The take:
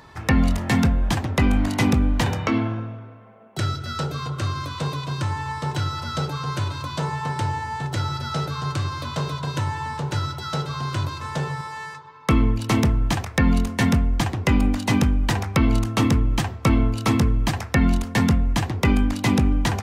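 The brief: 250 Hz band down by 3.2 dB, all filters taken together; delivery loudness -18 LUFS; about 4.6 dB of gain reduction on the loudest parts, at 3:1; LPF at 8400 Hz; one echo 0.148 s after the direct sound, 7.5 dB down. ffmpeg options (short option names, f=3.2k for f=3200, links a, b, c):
-af "lowpass=8.4k,equalizer=f=250:t=o:g=-4,acompressor=threshold=-21dB:ratio=3,aecho=1:1:148:0.422,volume=8.5dB"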